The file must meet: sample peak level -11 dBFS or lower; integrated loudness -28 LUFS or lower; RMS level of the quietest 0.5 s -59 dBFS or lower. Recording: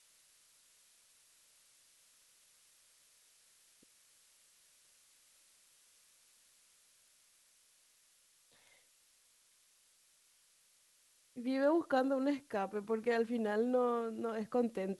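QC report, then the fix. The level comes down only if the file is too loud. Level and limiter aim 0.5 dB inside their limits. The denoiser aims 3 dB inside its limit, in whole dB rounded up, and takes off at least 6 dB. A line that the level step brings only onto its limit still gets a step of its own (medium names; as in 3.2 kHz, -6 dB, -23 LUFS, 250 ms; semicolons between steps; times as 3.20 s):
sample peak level -20.5 dBFS: pass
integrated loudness -35.0 LUFS: pass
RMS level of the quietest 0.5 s -70 dBFS: pass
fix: none needed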